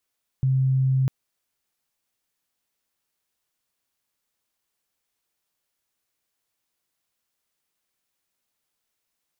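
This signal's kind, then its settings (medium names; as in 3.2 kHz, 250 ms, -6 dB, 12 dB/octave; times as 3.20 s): tone sine 132 Hz -17.5 dBFS 0.65 s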